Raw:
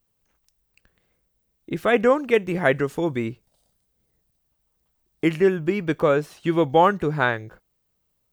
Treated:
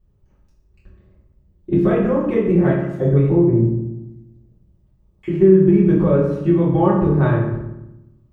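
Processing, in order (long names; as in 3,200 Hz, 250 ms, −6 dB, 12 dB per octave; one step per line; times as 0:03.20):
spectral tilt −4.5 dB per octave
downward compressor, threshold −18 dBFS, peak gain reduction 11.5 dB
0:02.68–0:05.28: multiband delay without the direct sound highs, lows 320 ms, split 1,500 Hz
convolution reverb RT60 0.95 s, pre-delay 3 ms, DRR −9 dB
level −5 dB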